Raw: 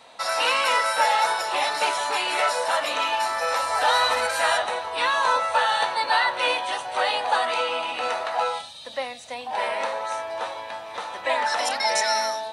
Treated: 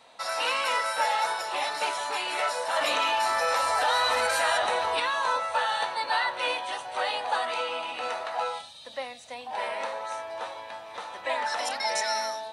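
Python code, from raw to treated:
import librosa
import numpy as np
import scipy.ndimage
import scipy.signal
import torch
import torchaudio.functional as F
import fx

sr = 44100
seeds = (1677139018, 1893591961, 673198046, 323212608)

y = fx.env_flatten(x, sr, amount_pct=70, at=(2.76, 5.0))
y = y * 10.0 ** (-5.5 / 20.0)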